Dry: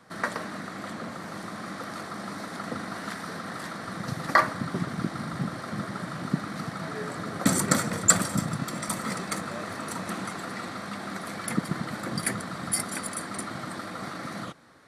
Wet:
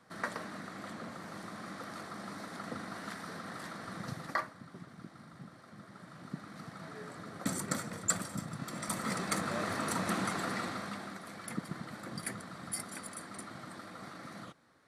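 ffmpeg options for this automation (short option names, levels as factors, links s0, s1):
-af "volume=3.98,afade=t=out:st=4.05:d=0.46:silence=0.251189,afade=t=in:st=5.79:d=1.04:silence=0.421697,afade=t=in:st=8.51:d=1.13:silence=0.251189,afade=t=out:st=10.48:d=0.7:silence=0.281838"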